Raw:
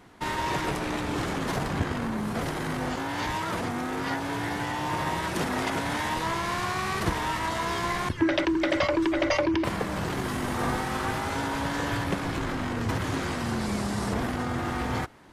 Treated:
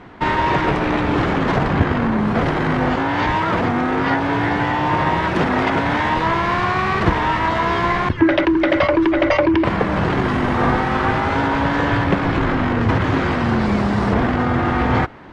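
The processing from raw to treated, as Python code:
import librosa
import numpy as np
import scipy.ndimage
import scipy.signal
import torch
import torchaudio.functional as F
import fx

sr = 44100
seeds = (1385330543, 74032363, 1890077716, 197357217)

p1 = fx.rider(x, sr, range_db=10, speed_s=0.5)
p2 = x + F.gain(torch.from_numpy(p1), 2.0).numpy()
p3 = scipy.signal.sosfilt(scipy.signal.butter(2, 2700.0, 'lowpass', fs=sr, output='sos'), p2)
y = F.gain(torch.from_numpy(p3), 4.0).numpy()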